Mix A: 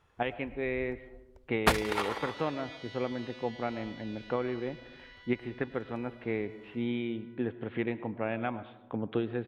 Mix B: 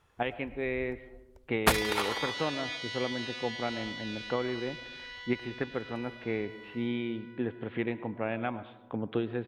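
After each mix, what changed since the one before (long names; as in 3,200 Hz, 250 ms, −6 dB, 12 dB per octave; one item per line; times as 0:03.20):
second sound +9.5 dB
master: add high-shelf EQ 6,900 Hz +8.5 dB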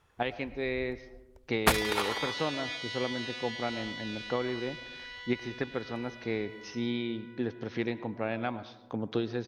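speech: remove Butterworth low-pass 3,300 Hz 48 dB per octave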